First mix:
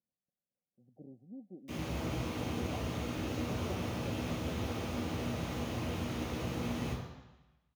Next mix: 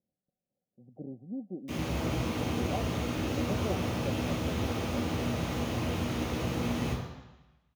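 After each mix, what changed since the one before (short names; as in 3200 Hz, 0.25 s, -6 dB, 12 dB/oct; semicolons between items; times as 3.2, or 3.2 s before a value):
speech +10.0 dB; background +5.0 dB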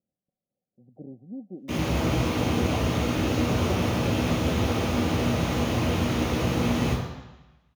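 background: send +7.0 dB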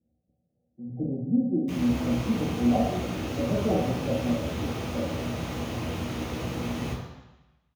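speech: send on; background: send -7.0 dB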